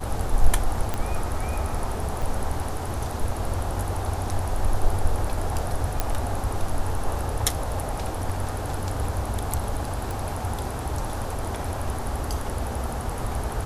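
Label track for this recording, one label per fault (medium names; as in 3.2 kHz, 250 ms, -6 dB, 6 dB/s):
0.940000	0.940000	pop -12 dBFS
2.220000	2.220000	dropout 4.6 ms
6.000000	6.000000	pop -8 dBFS
10.110000	10.110000	pop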